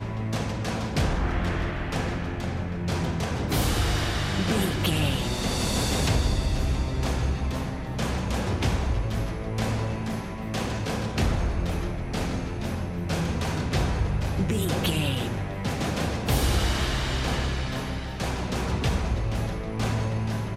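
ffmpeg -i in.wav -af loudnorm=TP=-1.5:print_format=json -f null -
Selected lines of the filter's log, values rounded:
"input_i" : "-27.7",
"input_tp" : "-10.0",
"input_lra" : "3.2",
"input_thresh" : "-37.7",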